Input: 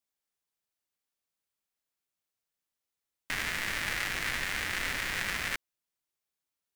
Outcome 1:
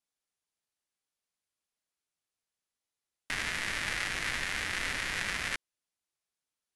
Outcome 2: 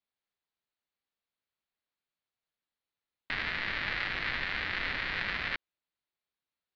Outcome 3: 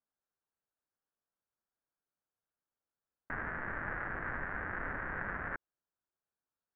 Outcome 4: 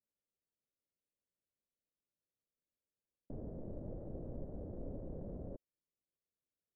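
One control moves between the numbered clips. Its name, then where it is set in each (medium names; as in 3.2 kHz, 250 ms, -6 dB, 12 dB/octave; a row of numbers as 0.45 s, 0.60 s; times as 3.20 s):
elliptic low-pass, frequency: 11 kHz, 4.3 kHz, 1.6 kHz, 580 Hz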